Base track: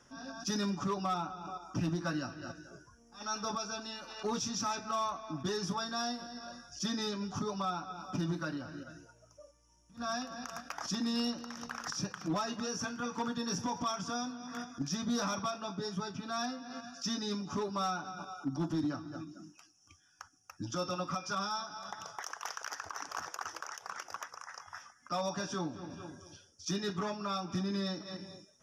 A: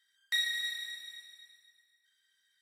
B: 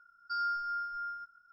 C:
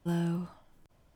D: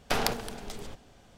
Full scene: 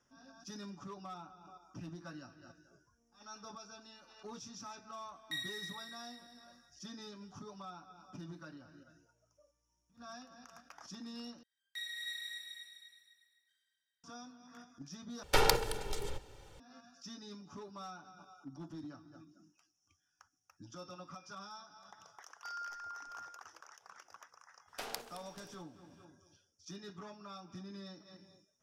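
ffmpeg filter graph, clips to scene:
ffmpeg -i bed.wav -i cue0.wav -i cue1.wav -i cue2.wav -i cue3.wav -filter_complex "[1:a]asplit=2[link_01][link_02];[4:a]asplit=2[link_03][link_04];[0:a]volume=-13.5dB[link_05];[link_02]dynaudnorm=framelen=100:gausssize=13:maxgain=14dB[link_06];[link_03]aecho=1:1:2.2:0.77[link_07];[link_04]bass=frequency=250:gain=-13,treble=frequency=4000:gain=4[link_08];[link_05]asplit=3[link_09][link_10][link_11];[link_09]atrim=end=11.434[link_12];[link_06]atrim=end=2.61,asetpts=PTS-STARTPTS,volume=-16dB[link_13];[link_10]atrim=start=14.036:end=15.234[link_14];[link_07]atrim=end=1.37,asetpts=PTS-STARTPTS,volume=-1.5dB[link_15];[link_11]atrim=start=16.596[link_16];[link_01]atrim=end=2.61,asetpts=PTS-STARTPTS,volume=-10dB,afade=type=in:duration=0.004:curve=hsin,afade=type=out:start_time=2.606:duration=0.004:curve=hsin,adelay=4990[link_17];[2:a]atrim=end=1.52,asetpts=PTS-STARTPTS,volume=-11dB,afade=type=in:duration=0.004:curve=hsin,afade=type=out:start_time=1.516:duration=0.004:curve=hsin,adelay=22140[link_18];[link_08]atrim=end=1.37,asetpts=PTS-STARTPTS,volume=-15dB,afade=type=in:duration=0.004:curve=hsin,afade=type=out:start_time=1.366:duration=0.004:curve=hsin,adelay=24680[link_19];[link_12][link_13]acrossfade=duration=0.004:curve1=hsin:curve2=hsin[link_20];[link_20][link_14]acrossfade=duration=0.004:curve1=hsin:curve2=hsin[link_21];[link_21][link_15]acrossfade=duration=0.004:curve1=hsin:curve2=hsin[link_22];[link_22][link_16]acrossfade=duration=0.004:curve1=hsin:curve2=hsin[link_23];[link_23][link_17][link_18][link_19]amix=inputs=4:normalize=0" out.wav

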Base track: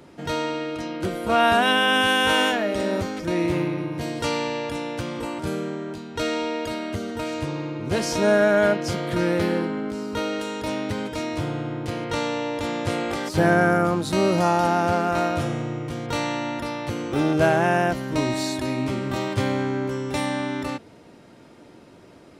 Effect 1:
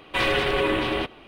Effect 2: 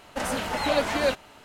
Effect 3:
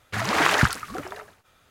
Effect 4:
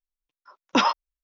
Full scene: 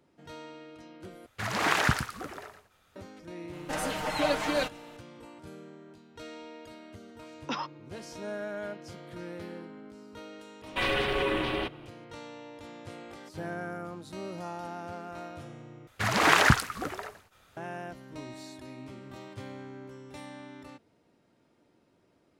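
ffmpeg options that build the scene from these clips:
ffmpeg -i bed.wav -i cue0.wav -i cue1.wav -i cue2.wav -i cue3.wav -filter_complex "[3:a]asplit=2[link_01][link_02];[0:a]volume=-19dB[link_03];[link_01]aecho=1:1:115:0.335[link_04];[2:a]aecho=1:1:6.5:0.65[link_05];[link_03]asplit=3[link_06][link_07][link_08];[link_06]atrim=end=1.264[link_09];[link_04]atrim=end=1.7,asetpts=PTS-STARTPTS,volume=-6dB[link_10];[link_07]atrim=start=2.956:end=15.874[link_11];[link_02]atrim=end=1.7,asetpts=PTS-STARTPTS,volume=-1dB[link_12];[link_08]atrim=start=17.566[link_13];[link_05]atrim=end=1.44,asetpts=PTS-STARTPTS,volume=-5dB,afade=type=in:duration=0.004:curve=hsin,afade=type=out:start_time=1.436:duration=0.004:curve=hsin,adelay=155673S[link_14];[4:a]atrim=end=1.23,asetpts=PTS-STARTPTS,volume=-14dB,afade=type=in:duration=0.004:curve=hsin,afade=type=out:start_time=1.226:duration=0.004:curve=hsin,adelay=297234S[link_15];[1:a]atrim=end=1.27,asetpts=PTS-STARTPTS,volume=-5.5dB,afade=type=in:duration=0.004:curve=hsin,afade=type=out:start_time=1.266:duration=0.004:curve=hsin,adelay=10620[link_16];[link_09][link_10]acrossfade=duration=0.004:curve1=hsin:curve2=hsin[link_17];[link_17][link_11]acrossfade=duration=0.004:curve1=hsin:curve2=hsin[link_18];[link_18][link_12]acrossfade=duration=0.004:curve1=hsin:curve2=hsin[link_19];[link_19][link_13]acrossfade=duration=0.004:curve1=hsin:curve2=hsin[link_20];[link_20][link_14][link_15][link_16]amix=inputs=4:normalize=0" out.wav

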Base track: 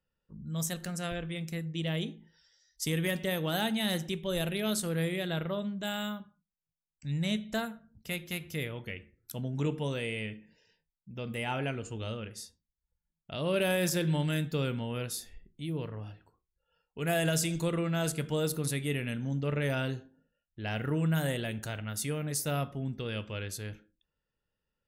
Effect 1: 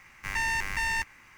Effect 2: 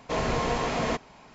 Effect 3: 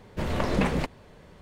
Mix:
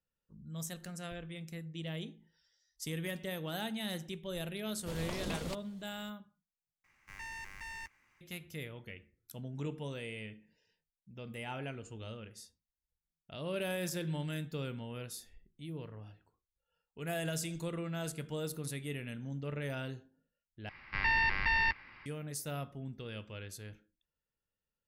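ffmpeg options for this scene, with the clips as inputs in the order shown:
ffmpeg -i bed.wav -i cue0.wav -i cue1.wav -i cue2.wav -filter_complex "[1:a]asplit=2[link_01][link_02];[0:a]volume=-8dB[link_03];[3:a]aexciter=amount=3.6:drive=5.1:freq=3000[link_04];[link_02]aresample=11025,aresample=44100[link_05];[link_03]asplit=3[link_06][link_07][link_08];[link_06]atrim=end=6.844[link_09];[link_01]atrim=end=1.37,asetpts=PTS-STARTPTS,volume=-16.5dB[link_10];[link_07]atrim=start=8.206:end=20.694[link_11];[link_05]atrim=end=1.37,asetpts=PTS-STARTPTS,volume=-0.5dB[link_12];[link_08]atrim=start=22.056[link_13];[link_04]atrim=end=1.41,asetpts=PTS-STARTPTS,volume=-15dB,afade=type=in:duration=0.004:curve=hsin,afade=type=out:start_time=1.406:duration=0.004:curve=hsin,adelay=206829S[link_14];[link_09][link_10]acrossfade=duration=0.004:curve1=hsin:curve2=hsin[link_15];[link_15][link_11]acrossfade=duration=0.004:curve1=hsin:curve2=hsin[link_16];[link_16][link_12]acrossfade=duration=0.004:curve1=hsin:curve2=hsin[link_17];[link_17][link_13]acrossfade=duration=0.004:curve1=hsin:curve2=hsin[link_18];[link_18][link_14]amix=inputs=2:normalize=0" out.wav

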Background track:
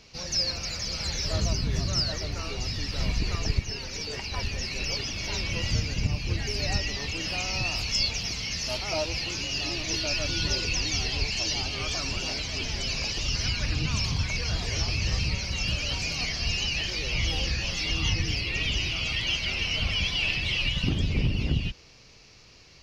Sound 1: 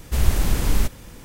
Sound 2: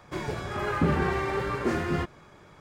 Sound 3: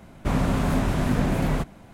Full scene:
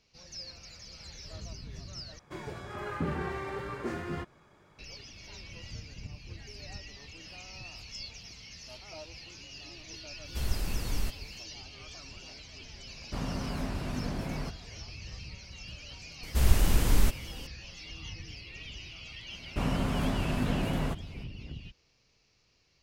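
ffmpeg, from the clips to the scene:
ffmpeg -i bed.wav -i cue0.wav -i cue1.wav -i cue2.wav -filter_complex "[1:a]asplit=2[link_01][link_02];[3:a]asplit=2[link_03][link_04];[0:a]volume=-16.5dB,asplit=2[link_05][link_06];[link_05]atrim=end=2.194[link_07];[2:a]atrim=end=2.6,asetpts=PTS-STARTPTS,volume=-8.5dB[link_08];[link_06]atrim=start=4.786[link_09];[link_01]atrim=end=1.24,asetpts=PTS-STARTPTS,volume=-12.5dB,afade=type=in:duration=0.1,afade=type=out:start_time=1.14:duration=0.1,adelay=10230[link_10];[link_03]atrim=end=1.93,asetpts=PTS-STARTPTS,volume=-12dB,afade=type=in:duration=0.004:curve=hsin,afade=type=out:start_time=1.926:duration=0.004:curve=hsin,adelay=12870[link_11];[link_02]atrim=end=1.24,asetpts=PTS-STARTPTS,volume=-4dB,afade=type=in:duration=0.004:curve=hsin,afade=type=out:start_time=1.236:duration=0.004:curve=hsin,adelay=16230[link_12];[link_04]atrim=end=1.93,asetpts=PTS-STARTPTS,volume=-7dB,afade=type=in:duration=0.004:curve=hsin,afade=type=out:start_time=1.926:duration=0.004:curve=hsin,adelay=19310[link_13];[link_07][link_08]acrossfade=duration=0.004:curve1=hsin:curve2=hsin[link_14];[link_14][link_09]acrossfade=duration=0.004:curve1=hsin:curve2=hsin[link_15];[link_15][link_10][link_11][link_12][link_13]amix=inputs=5:normalize=0" out.wav

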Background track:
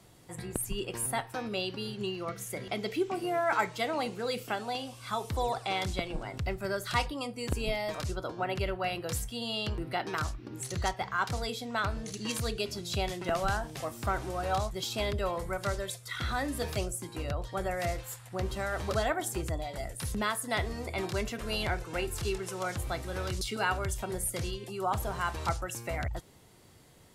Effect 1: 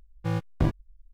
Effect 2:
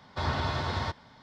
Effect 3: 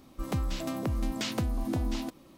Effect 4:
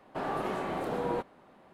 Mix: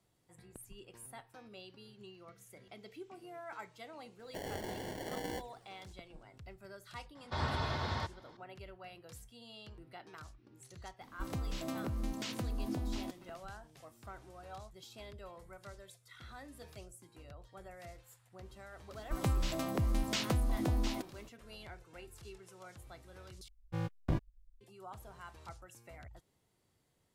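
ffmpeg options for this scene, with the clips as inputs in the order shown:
ffmpeg -i bed.wav -i cue0.wav -i cue1.wav -i cue2.wav -i cue3.wav -filter_complex "[3:a]asplit=2[link_01][link_02];[0:a]volume=-18.5dB[link_03];[4:a]acrusher=samples=35:mix=1:aa=0.000001[link_04];[link_01]alimiter=limit=-22dB:level=0:latency=1:release=270[link_05];[link_02]equalizer=frequency=250:width=1.9:gain=-4.5[link_06];[link_03]asplit=2[link_07][link_08];[link_07]atrim=end=23.484[link_09];[1:a]atrim=end=1.13,asetpts=PTS-STARTPTS,volume=-9dB[link_10];[link_08]atrim=start=24.606[link_11];[link_04]atrim=end=1.73,asetpts=PTS-STARTPTS,volume=-9dB,afade=type=in:duration=0.004:curve=hsin,afade=type=out:start_time=1.726:duration=0.004:curve=hsin,adelay=4190[link_12];[2:a]atrim=end=1.22,asetpts=PTS-STARTPTS,volume=-5.5dB,afade=type=in:duration=0.004:curve=hsin,afade=type=out:start_time=1.216:duration=0.004:curve=hsin,adelay=7150[link_13];[link_05]atrim=end=2.37,asetpts=PTS-STARTPTS,volume=-5.5dB,afade=type=in:duration=0.004:curve=hsin,afade=type=out:start_time=2.366:duration=0.004:curve=hsin,adelay=11010[link_14];[link_06]atrim=end=2.37,asetpts=PTS-STARTPTS,volume=-1dB,afade=type=in:duration=0.004:curve=hsin,afade=type=out:start_time=2.366:duration=0.004:curve=hsin,adelay=834372S[link_15];[link_09][link_10]acrossfade=duration=0.004:curve1=hsin:curve2=hsin[link_16];[link_16][link_11]acrossfade=duration=0.004:curve1=hsin:curve2=hsin[link_17];[link_17][link_12][link_13][link_14][link_15]amix=inputs=5:normalize=0" out.wav

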